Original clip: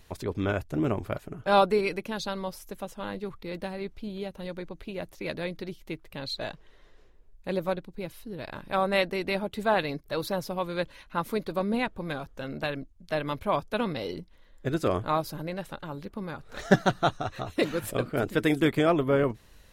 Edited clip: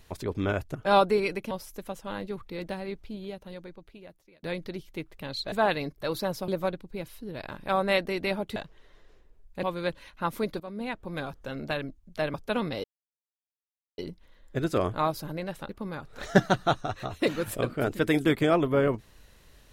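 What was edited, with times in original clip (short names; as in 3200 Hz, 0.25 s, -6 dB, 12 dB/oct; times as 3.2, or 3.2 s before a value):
0.75–1.36 cut
2.12–2.44 cut
3.74–5.36 fade out
6.45–7.52 swap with 9.6–10.56
11.53–12.18 fade in, from -16 dB
13.27–13.58 cut
14.08 insert silence 1.14 s
15.79–16.05 cut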